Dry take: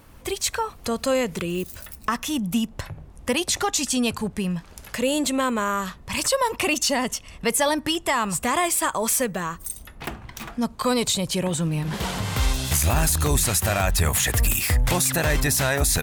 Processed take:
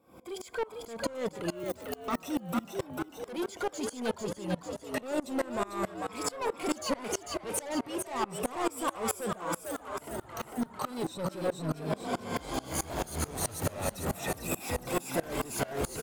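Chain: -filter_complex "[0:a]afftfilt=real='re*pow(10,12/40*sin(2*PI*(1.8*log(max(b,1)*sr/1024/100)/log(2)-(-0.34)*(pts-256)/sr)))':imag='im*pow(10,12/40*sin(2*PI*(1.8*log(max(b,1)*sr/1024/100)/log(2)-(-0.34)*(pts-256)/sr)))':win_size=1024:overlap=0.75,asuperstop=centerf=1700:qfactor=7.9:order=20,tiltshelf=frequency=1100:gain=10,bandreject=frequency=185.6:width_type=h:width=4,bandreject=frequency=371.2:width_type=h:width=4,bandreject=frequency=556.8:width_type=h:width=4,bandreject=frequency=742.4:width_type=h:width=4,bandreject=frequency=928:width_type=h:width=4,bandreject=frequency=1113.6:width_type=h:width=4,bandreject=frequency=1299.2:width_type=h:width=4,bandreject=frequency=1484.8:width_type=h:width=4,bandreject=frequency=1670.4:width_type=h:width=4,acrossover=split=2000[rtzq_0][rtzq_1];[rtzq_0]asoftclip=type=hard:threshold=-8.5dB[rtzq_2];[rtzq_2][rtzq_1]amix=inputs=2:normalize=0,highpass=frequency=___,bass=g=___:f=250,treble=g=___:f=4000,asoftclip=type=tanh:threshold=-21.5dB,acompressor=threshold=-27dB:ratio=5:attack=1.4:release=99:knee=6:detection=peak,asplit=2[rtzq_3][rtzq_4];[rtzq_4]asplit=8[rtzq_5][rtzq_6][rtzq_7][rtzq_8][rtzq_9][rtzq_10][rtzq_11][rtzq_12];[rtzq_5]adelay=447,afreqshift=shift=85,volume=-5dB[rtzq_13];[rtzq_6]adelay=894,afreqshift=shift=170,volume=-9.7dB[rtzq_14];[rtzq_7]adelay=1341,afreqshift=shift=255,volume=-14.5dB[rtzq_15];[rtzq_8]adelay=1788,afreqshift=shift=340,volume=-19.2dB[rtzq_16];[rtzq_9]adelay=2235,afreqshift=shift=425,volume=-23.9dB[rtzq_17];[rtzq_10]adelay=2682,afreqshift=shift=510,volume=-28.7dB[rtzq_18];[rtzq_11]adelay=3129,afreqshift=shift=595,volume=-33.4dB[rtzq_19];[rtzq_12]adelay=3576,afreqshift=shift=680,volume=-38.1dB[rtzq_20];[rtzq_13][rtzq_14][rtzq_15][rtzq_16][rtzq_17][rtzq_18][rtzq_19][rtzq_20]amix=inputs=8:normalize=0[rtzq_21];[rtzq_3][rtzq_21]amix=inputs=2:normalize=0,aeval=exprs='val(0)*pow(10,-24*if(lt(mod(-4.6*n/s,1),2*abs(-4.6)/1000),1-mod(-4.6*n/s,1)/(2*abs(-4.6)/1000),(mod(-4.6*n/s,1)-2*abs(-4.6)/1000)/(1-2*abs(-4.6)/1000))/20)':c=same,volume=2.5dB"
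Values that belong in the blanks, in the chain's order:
96, -12, 2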